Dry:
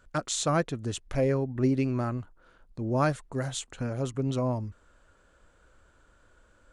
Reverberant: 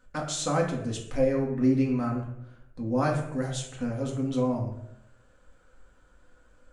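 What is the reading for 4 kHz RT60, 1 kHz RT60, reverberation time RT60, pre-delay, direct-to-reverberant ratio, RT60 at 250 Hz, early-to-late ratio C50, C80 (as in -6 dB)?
0.50 s, 0.70 s, 0.75 s, 4 ms, -2.0 dB, 0.95 s, 6.0 dB, 9.0 dB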